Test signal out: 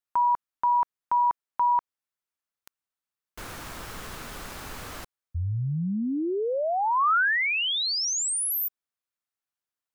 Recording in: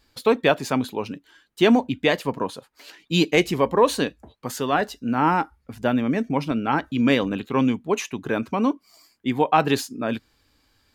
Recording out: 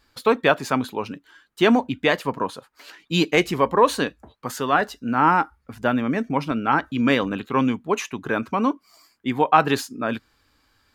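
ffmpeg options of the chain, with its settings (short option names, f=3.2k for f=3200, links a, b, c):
-af "equalizer=f=1.3k:w=1.3:g=6.5,volume=-1dB"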